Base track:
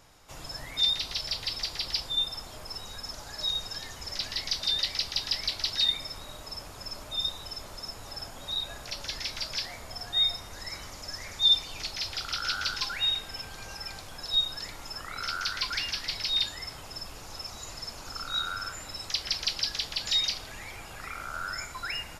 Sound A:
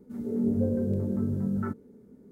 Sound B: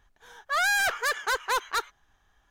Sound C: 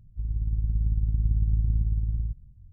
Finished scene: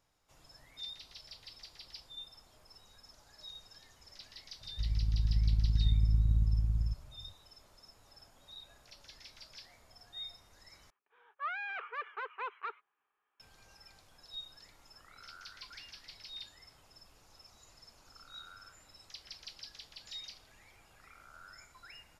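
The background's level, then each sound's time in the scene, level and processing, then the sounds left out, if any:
base track -19 dB
4.61 s: add C -3.5 dB
10.90 s: replace with B -14.5 dB + cabinet simulation 410–2600 Hz, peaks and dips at 420 Hz +7 dB, 660 Hz -7 dB, 1.2 kHz +7 dB, 1.7 kHz -5 dB, 2.5 kHz +9 dB
not used: A

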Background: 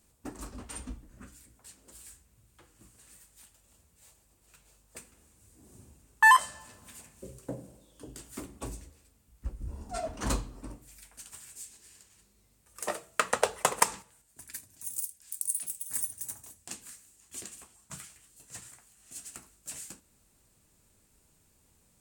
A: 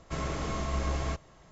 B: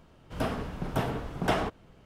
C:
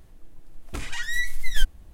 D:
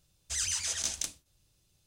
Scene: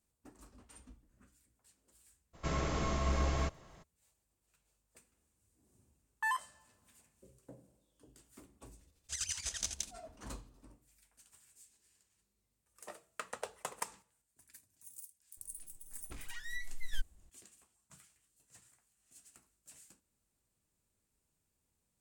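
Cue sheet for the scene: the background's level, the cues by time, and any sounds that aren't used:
background -16 dB
2.33 s: add A -1.5 dB, fades 0.02 s
8.79 s: add D -4 dB + square tremolo 12 Hz, depth 65%, duty 40%
15.37 s: add C -16 dB
not used: B

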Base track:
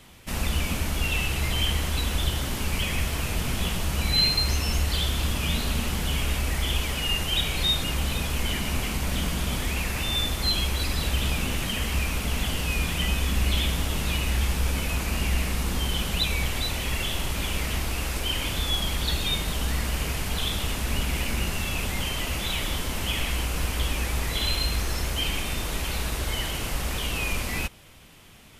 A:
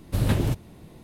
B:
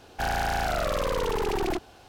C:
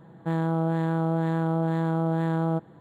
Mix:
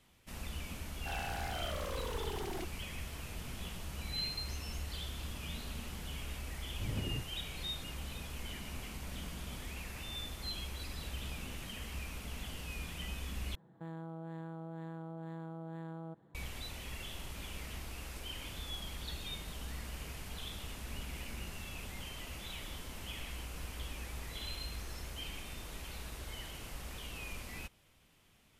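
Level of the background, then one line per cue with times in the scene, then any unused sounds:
base track -16.5 dB
0.87 s: add B -14 dB
6.67 s: add A -15.5 dB + Bessel low-pass 690 Hz
13.55 s: replace with C -13.5 dB + peak limiter -23 dBFS

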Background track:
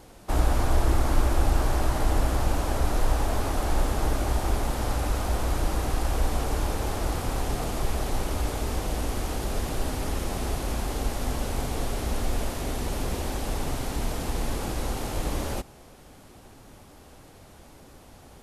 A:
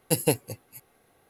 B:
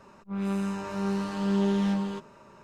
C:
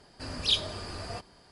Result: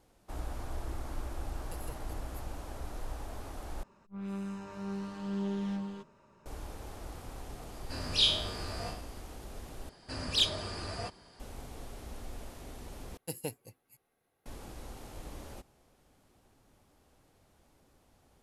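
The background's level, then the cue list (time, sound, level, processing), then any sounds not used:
background track -16.5 dB
1.61 s: add A -9 dB + compression, threshold -37 dBFS
3.83 s: replace with B -11 dB + bass shelf 120 Hz +7.5 dB
7.70 s: add C -3 dB + spectral sustain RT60 0.58 s
9.89 s: replace with C + single-diode clipper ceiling -19.5 dBFS
13.17 s: replace with A -15 dB

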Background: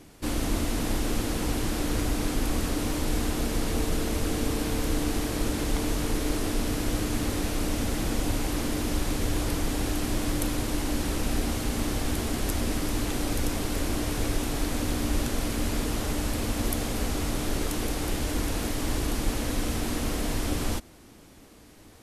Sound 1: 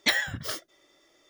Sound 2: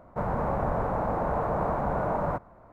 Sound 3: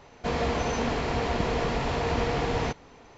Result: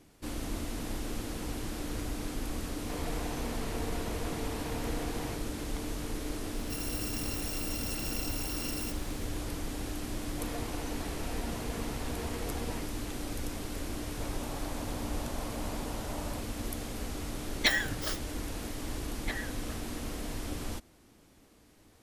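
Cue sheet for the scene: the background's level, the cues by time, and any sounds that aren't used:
background -9 dB
2.63 s: add 3 -13 dB + phase dispersion lows, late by 52 ms, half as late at 550 Hz
6.54 s: add 2 -11.5 dB + bit-reversed sample order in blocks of 256 samples
10.13 s: add 3 -12 dB + expander on every frequency bin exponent 1.5
14.03 s: add 2 -16 dB
17.58 s: add 1 -2.5 dB
19.21 s: add 1 -11.5 dB + low-pass 2.3 kHz

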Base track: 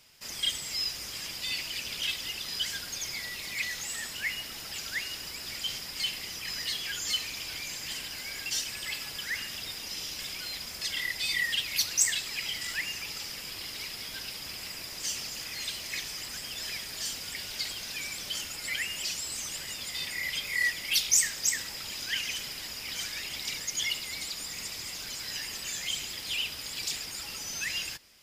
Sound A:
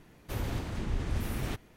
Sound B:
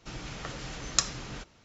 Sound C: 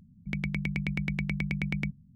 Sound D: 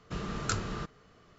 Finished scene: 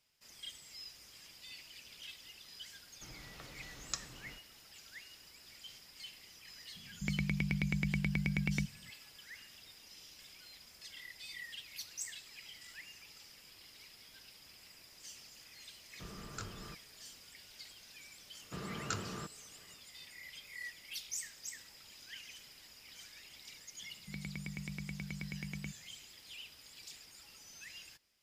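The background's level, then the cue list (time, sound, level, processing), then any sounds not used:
base track -18 dB
2.95 s: add B -14 dB
6.75 s: add C -3 dB
15.89 s: add D -13 dB
18.41 s: add D -6 dB + high-pass 100 Hz
23.81 s: add C -12 dB + high-pass 52 Hz
not used: A

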